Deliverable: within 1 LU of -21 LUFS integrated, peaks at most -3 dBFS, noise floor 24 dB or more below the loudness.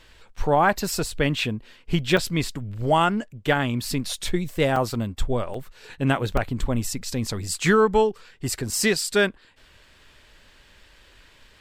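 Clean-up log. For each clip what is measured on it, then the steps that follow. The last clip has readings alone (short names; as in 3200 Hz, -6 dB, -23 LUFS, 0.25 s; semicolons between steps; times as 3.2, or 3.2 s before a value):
dropouts 4; longest dropout 3.4 ms; loudness -24.0 LUFS; peak -6.5 dBFS; loudness target -21.0 LUFS
-> interpolate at 2.17/4.76/5.54/6.37, 3.4 ms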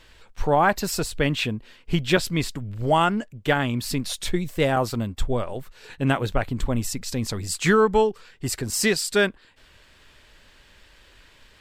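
dropouts 0; loudness -24.0 LUFS; peak -6.5 dBFS; loudness target -21.0 LUFS
-> gain +3 dB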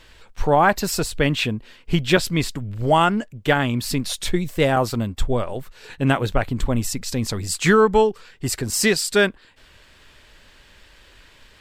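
loudness -21.0 LUFS; peak -3.5 dBFS; noise floor -52 dBFS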